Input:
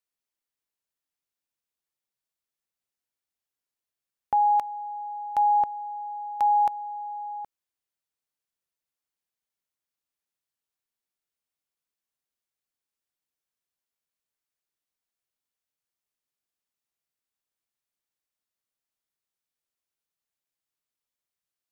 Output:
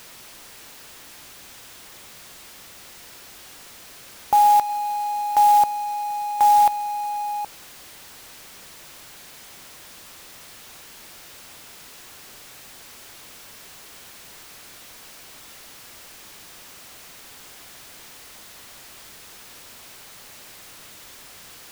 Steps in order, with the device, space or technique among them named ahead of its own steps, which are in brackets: early CD player with a faulty converter (jump at every zero crossing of -40.5 dBFS; sampling jitter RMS 0.023 ms); 4.67–5.36 s: doubling 22 ms -5 dB; trim +6 dB

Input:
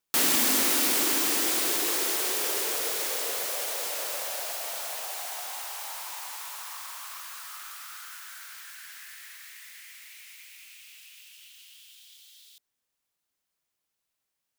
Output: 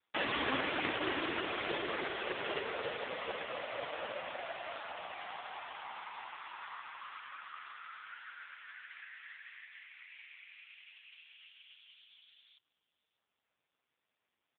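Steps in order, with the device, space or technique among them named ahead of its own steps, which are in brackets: satellite phone (band-pass 310–3100 Hz; delay 594 ms -22.5 dB; trim +3 dB; AMR-NB 4.75 kbps 8 kHz)

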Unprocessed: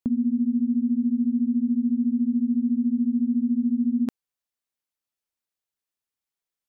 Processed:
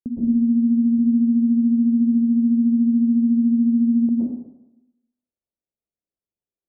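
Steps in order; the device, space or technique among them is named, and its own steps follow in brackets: 0.86–2.01 s: high-pass 57 Hz; next room (low-pass 620 Hz 24 dB/octave; reverberation RT60 0.95 s, pre-delay 107 ms, DRR -7.5 dB); trim -3.5 dB

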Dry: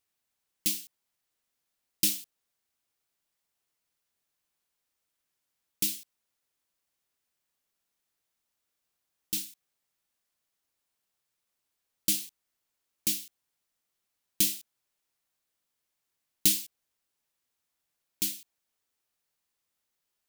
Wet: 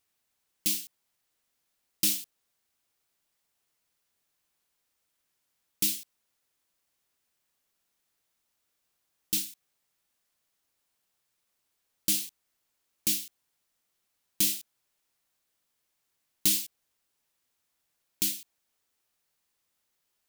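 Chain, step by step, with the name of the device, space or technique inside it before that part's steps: soft clipper into limiter (saturation -13.5 dBFS, distortion -19 dB; peak limiter -18.5 dBFS, peak gain reduction 4.5 dB); trim +4 dB

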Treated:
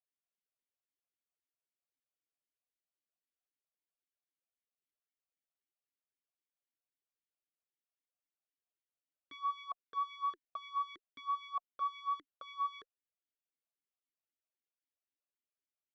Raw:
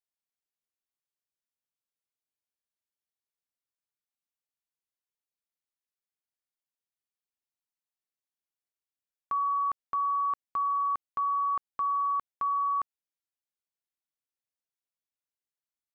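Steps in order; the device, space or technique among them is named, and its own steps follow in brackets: talk box (valve stage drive 31 dB, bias 0.25; talking filter a-i 3.8 Hz); trim +6.5 dB

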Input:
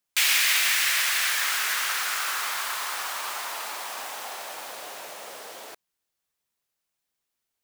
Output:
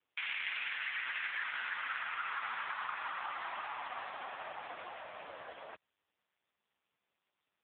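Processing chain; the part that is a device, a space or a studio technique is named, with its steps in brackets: 4.40–5.35 s: high-pass 47 Hz 24 dB/octave; voicemail (band-pass 430–2700 Hz; compression 10:1, threshold -30 dBFS, peak gain reduction 8 dB; AMR-NB 4.75 kbps 8 kHz)

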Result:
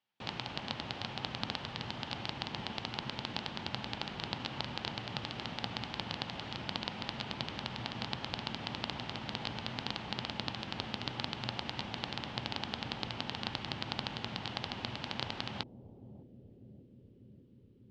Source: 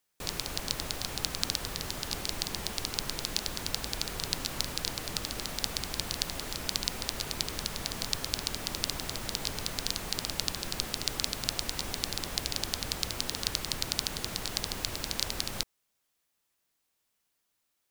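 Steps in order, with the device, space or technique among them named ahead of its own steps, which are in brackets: analogue delay pedal into a guitar amplifier (bucket-brigade echo 594 ms, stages 2048, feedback 75%, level -9 dB; valve stage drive 16 dB, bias 0.8; cabinet simulation 94–4200 Hz, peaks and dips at 120 Hz +9 dB, 220 Hz +7 dB, 440 Hz -3 dB, 850 Hz +7 dB, 3 kHz +6 dB)

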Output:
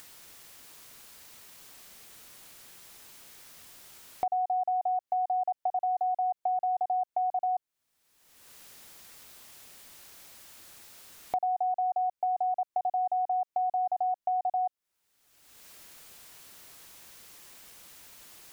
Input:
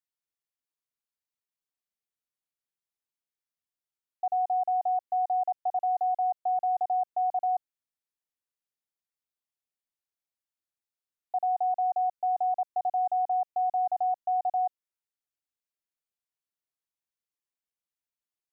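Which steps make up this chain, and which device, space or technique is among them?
upward and downward compression (upward compressor, threshold -34 dBFS; compression 5:1, threshold -36 dBFS, peak gain reduction 10 dB); trim +8 dB

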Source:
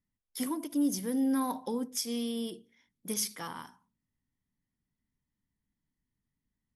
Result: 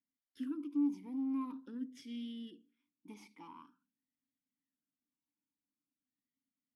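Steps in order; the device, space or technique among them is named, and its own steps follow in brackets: talk box (valve stage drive 29 dB, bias 0.45; talking filter i-u 0.46 Hz); trim +2.5 dB

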